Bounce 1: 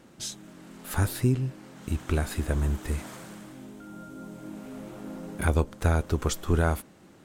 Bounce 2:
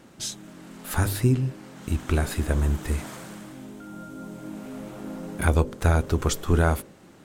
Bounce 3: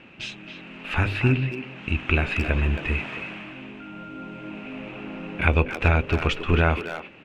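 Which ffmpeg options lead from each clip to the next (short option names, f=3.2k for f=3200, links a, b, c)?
-af "bandreject=f=49.65:t=h:w=4,bandreject=f=99.3:t=h:w=4,bandreject=f=148.95:t=h:w=4,bandreject=f=198.6:t=h:w=4,bandreject=f=248.25:t=h:w=4,bandreject=f=297.9:t=h:w=4,bandreject=f=347.55:t=h:w=4,bandreject=f=397.2:t=h:w=4,bandreject=f=446.85:t=h:w=4,bandreject=f=496.5:t=h:w=4,bandreject=f=546.15:t=h:w=4,bandreject=f=595.8:t=h:w=4,volume=3.5dB"
-filter_complex "[0:a]lowpass=f=2.6k:t=q:w=9.9,asplit=2[a][b];[b]adelay=270,highpass=300,lowpass=3.4k,asoftclip=type=hard:threshold=-17dB,volume=-7dB[c];[a][c]amix=inputs=2:normalize=0"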